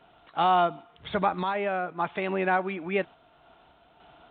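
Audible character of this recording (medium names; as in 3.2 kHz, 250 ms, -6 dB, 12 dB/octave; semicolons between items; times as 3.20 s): random-step tremolo; µ-law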